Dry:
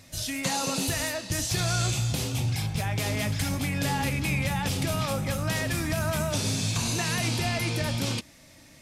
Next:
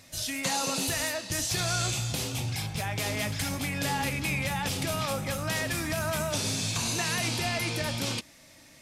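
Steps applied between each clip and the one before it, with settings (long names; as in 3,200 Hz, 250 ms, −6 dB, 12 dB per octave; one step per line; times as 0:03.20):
low-shelf EQ 270 Hz −6.5 dB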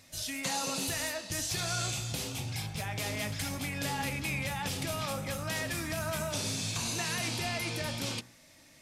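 hum removal 60.28 Hz, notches 31
level −4 dB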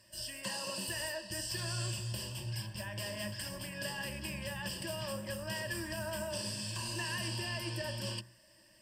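EQ curve with evenly spaced ripples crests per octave 1.3, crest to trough 17 dB
harmonic generator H 2 −20 dB, 4 −30 dB, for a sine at −17 dBFS
level −8 dB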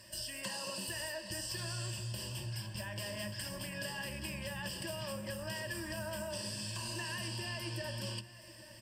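downward compressor 2.5 to 1, threshold −50 dBFS, peak gain reduction 11 dB
single-tap delay 822 ms −17 dB
level +7.5 dB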